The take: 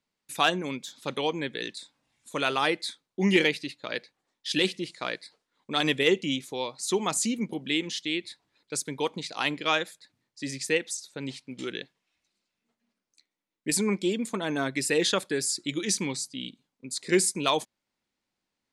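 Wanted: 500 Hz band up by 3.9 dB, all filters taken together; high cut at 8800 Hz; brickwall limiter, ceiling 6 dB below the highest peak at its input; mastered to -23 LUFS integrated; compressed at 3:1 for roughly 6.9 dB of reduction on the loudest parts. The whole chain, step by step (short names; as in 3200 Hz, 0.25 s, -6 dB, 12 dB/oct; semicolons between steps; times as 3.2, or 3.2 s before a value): LPF 8800 Hz; bell 500 Hz +5 dB; compressor 3:1, threshold -24 dBFS; gain +8.5 dB; limiter -10 dBFS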